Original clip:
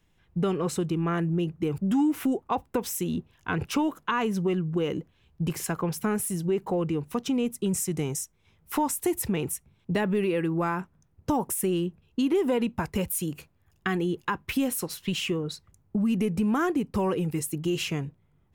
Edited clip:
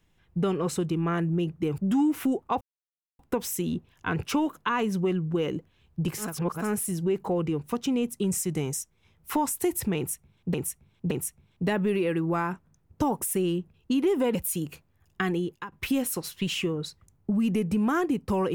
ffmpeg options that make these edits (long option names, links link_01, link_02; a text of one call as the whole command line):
ffmpeg -i in.wav -filter_complex "[0:a]asplit=8[link_01][link_02][link_03][link_04][link_05][link_06][link_07][link_08];[link_01]atrim=end=2.61,asetpts=PTS-STARTPTS,afade=type=out:start_time=2.606:duration=0.004:curve=hsin,apad=pad_dur=0.58[link_09];[link_02]atrim=start=2.61:end=5.82,asetpts=PTS-STARTPTS,afade=type=in:duration=0.004:curve=hsin[link_10];[link_03]atrim=start=5.58:end=6.15,asetpts=PTS-STARTPTS,areverse[link_11];[link_04]atrim=start=5.91:end=9.962[link_12];[link_05]atrim=start=9.388:end=9.962[link_13];[link_06]atrim=start=9.388:end=12.632[link_14];[link_07]atrim=start=13.008:end=14.38,asetpts=PTS-STARTPTS,afade=type=out:start_time=1.002:duration=0.37:silence=0.158489[link_15];[link_08]atrim=start=14.38,asetpts=PTS-STARTPTS,afade=type=in:duration=0.004:curve=hsin:silence=0.158489[link_16];[link_09][link_10]concat=n=2:v=0:a=1[link_17];[link_17][link_11]acrossfade=duration=0.24:curve1=tri:curve2=tri[link_18];[link_18][link_12]acrossfade=duration=0.24:curve1=tri:curve2=tri[link_19];[link_19][link_13]acrossfade=duration=0.004:curve1=hsin:curve2=hsin[link_20];[link_20][link_14]acrossfade=duration=0.004:curve1=hsin:curve2=hsin[link_21];[link_15][link_16]concat=n=2:v=0:a=1[link_22];[link_21][link_22]acrossfade=duration=0.004:curve1=hsin:curve2=hsin" out.wav